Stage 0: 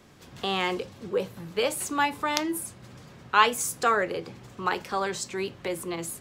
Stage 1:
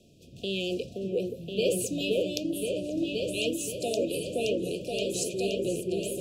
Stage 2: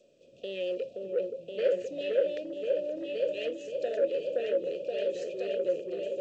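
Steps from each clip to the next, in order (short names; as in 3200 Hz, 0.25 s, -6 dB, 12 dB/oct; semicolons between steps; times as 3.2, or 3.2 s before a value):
repeats that get brighter 0.523 s, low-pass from 750 Hz, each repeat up 2 oct, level 0 dB; rotary speaker horn 0.9 Hz; FFT band-reject 720–2400 Hz
soft clip -22.5 dBFS, distortion -17 dB; double band-pass 1000 Hz, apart 1.7 oct; gain +8.5 dB; G.722 64 kbps 16000 Hz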